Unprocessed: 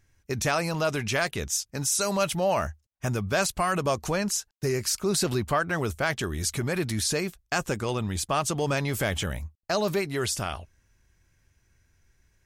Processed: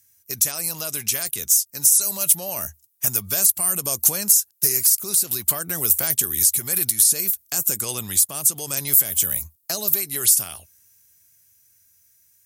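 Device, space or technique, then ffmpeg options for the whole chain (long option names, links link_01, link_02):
FM broadcast chain: -filter_complex "[0:a]highpass=frequency=79:width=0.5412,highpass=frequency=79:width=1.3066,dynaudnorm=framelen=330:gausssize=17:maxgain=11.5dB,acrossover=split=560|7800[link_01][link_02][link_03];[link_01]acompressor=threshold=-23dB:ratio=4[link_04];[link_02]acompressor=threshold=-28dB:ratio=4[link_05];[link_03]acompressor=threshold=-28dB:ratio=4[link_06];[link_04][link_05][link_06]amix=inputs=3:normalize=0,aemphasis=mode=production:type=75fm,alimiter=limit=-8.5dB:level=0:latency=1:release=471,asoftclip=type=hard:threshold=-12dB,lowpass=frequency=15000:width=0.5412,lowpass=frequency=15000:width=1.3066,aemphasis=mode=production:type=75fm,volume=-7.5dB"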